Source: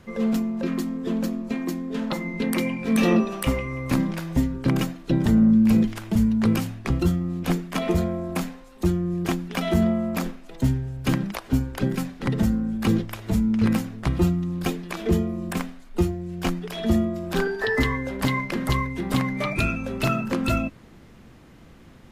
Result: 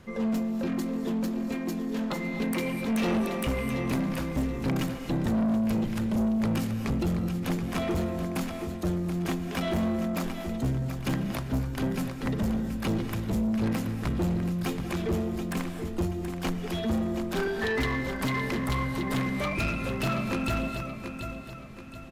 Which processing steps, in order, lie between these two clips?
feedback echo 0.728 s, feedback 38%, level -11 dB; non-linear reverb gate 0.29 s rising, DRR 11 dB; soft clip -21.5 dBFS, distortion -10 dB; gain -1.5 dB

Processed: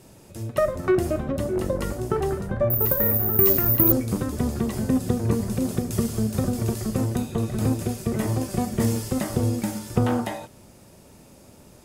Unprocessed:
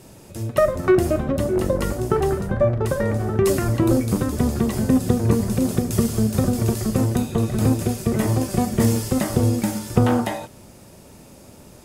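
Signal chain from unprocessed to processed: 2.7–3.92 careless resampling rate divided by 3×, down filtered, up zero stuff; gain -4.5 dB

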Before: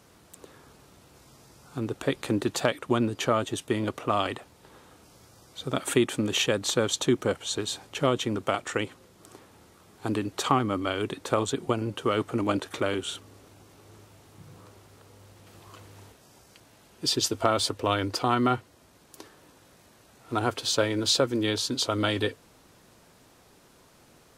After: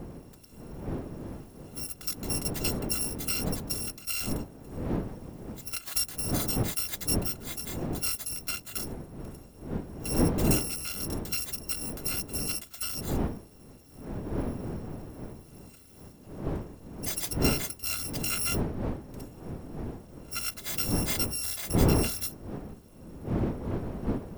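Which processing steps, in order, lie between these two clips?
FFT order left unsorted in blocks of 256 samples; wind noise 300 Hz -27 dBFS; gain -7 dB

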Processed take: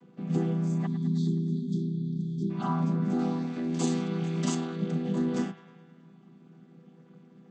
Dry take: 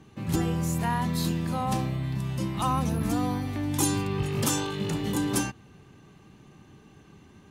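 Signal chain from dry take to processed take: chord vocoder minor triad, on E3; 0.87–2.5 spectral delete 450–3200 Hz; 3.19–4.55 high shelf 2800 Hz +10.5 dB; band-limited delay 0.105 s, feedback 63%, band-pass 1500 Hz, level -11 dB

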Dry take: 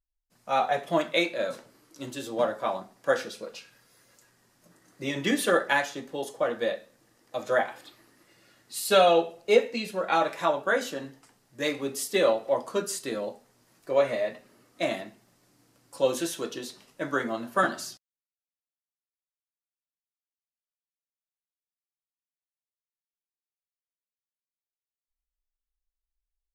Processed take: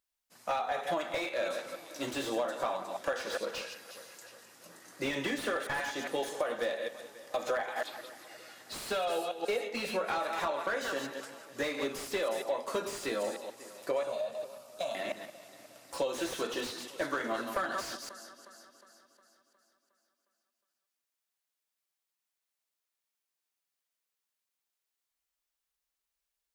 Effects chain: reverse delay 0.135 s, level -12 dB; HPF 550 Hz 6 dB/oct; in parallel at +2.5 dB: limiter -21 dBFS, peak gain reduction 11 dB; on the sum: compressor 12:1, threshold -30 dBFS, peak gain reduction 17 dB; 14.03–14.95 fixed phaser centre 820 Hz, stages 4; echo with dull and thin repeats by turns 0.18 s, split 2500 Hz, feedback 72%, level -13.5 dB; slew limiter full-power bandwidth 44 Hz; gain +1 dB

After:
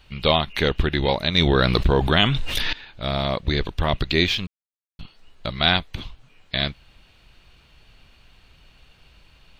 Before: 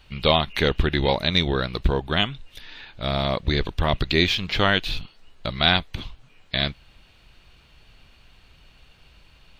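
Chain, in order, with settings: 1.38–2.73 fast leveller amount 70%; 4.47–4.99 mute

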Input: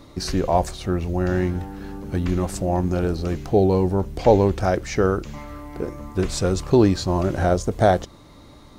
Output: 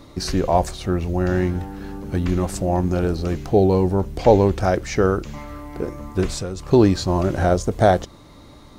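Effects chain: 6.3–6.72 compressor 6:1, threshold -27 dBFS, peak gain reduction 10 dB; gain +1.5 dB

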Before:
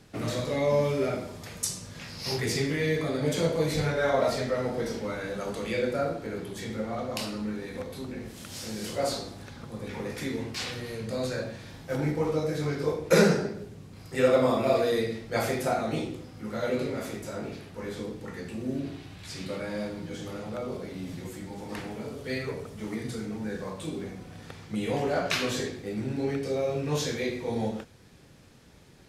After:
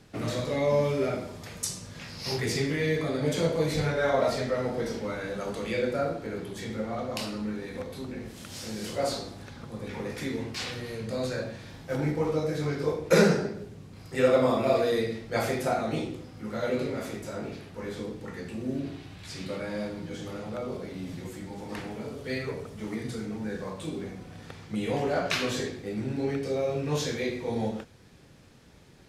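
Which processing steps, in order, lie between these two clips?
high shelf 8600 Hz -4 dB

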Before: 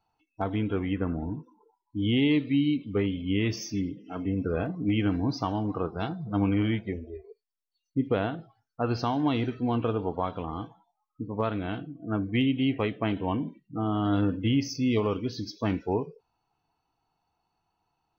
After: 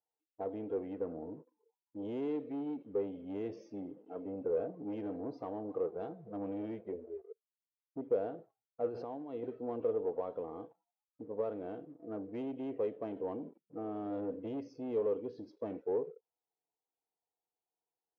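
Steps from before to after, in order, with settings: 8.86–9.43 negative-ratio compressor -32 dBFS, ratio -1; sample leveller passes 2; band-pass 490 Hz, Q 3.9; gain -5 dB

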